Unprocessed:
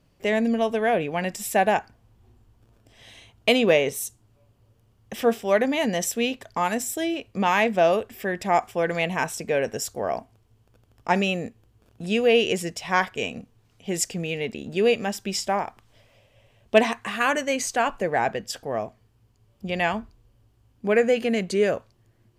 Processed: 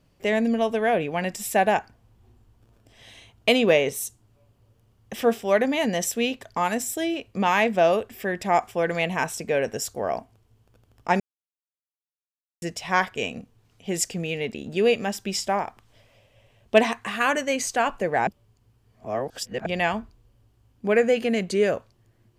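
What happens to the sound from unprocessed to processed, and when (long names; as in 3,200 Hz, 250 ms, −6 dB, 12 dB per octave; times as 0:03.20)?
0:11.20–0:12.62: silence
0:18.27–0:19.66: reverse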